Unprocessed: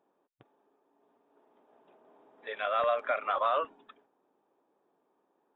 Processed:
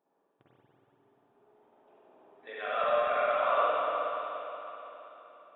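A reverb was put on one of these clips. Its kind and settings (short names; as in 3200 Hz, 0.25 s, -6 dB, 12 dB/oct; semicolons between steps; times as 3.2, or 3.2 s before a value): spring tank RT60 3.7 s, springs 47/59 ms, chirp 55 ms, DRR -9 dB; gain -7 dB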